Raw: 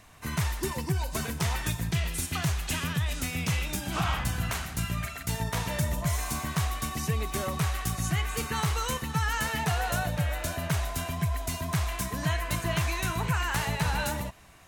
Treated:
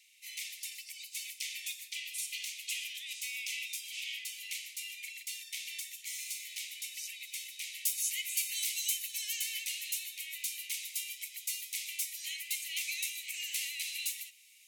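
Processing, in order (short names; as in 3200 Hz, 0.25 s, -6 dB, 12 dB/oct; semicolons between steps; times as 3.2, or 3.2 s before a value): steep high-pass 2100 Hz 96 dB/oct; high shelf 6900 Hz -3 dB, from 7.85 s +10.5 dB, from 9.36 s +5 dB; gain -2 dB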